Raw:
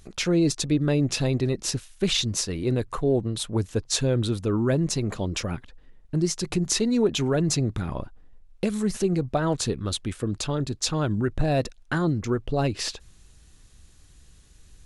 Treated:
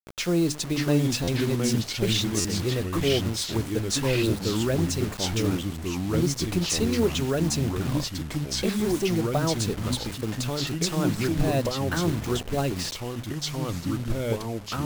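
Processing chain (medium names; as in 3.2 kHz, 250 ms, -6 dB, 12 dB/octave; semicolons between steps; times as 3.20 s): hum notches 50/100/150/200/250/300 Hz; Chebyshev shaper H 3 -45 dB, 4 -31 dB, 5 -22 dB, 7 -24 dB, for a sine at -8 dBFS; bit crusher 6-bit; ever faster or slower copies 549 ms, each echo -3 st, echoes 2; buffer glitch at 1.23/2.40 s, samples 512, times 3; trim -2.5 dB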